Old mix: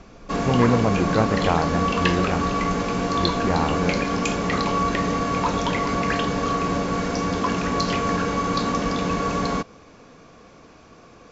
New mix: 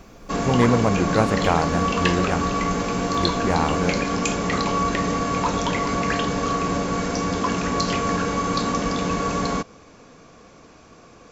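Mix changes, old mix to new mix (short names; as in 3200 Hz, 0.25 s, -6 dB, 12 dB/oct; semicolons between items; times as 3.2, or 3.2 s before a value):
speech: remove air absorption 400 m; master: remove LPF 6000 Hz 12 dB/oct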